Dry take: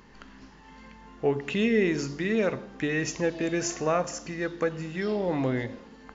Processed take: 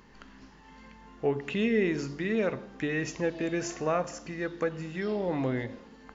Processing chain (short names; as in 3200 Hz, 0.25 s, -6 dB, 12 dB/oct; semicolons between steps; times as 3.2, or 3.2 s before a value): dynamic EQ 6400 Hz, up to -5 dB, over -50 dBFS, Q 1.1; gain -2.5 dB